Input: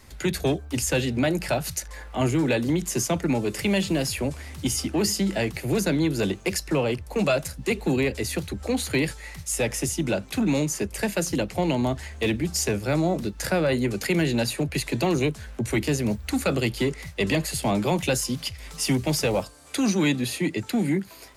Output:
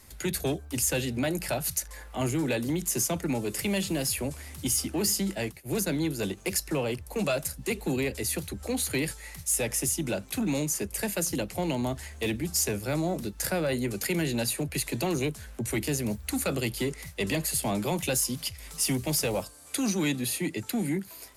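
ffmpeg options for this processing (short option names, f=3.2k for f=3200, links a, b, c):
-filter_complex "[0:a]asplit=3[a][b][c];[a]afade=t=out:st=5.31:d=0.02[d];[b]agate=range=-33dB:threshold=-22dB:ratio=3:detection=peak,afade=t=in:st=5.31:d=0.02,afade=t=out:st=6.36:d=0.02[e];[c]afade=t=in:st=6.36:d=0.02[f];[d][e][f]amix=inputs=3:normalize=0,equalizer=f=12k:w=0.66:g=11.5,asoftclip=type=tanh:threshold=-11dB,volume=-5dB"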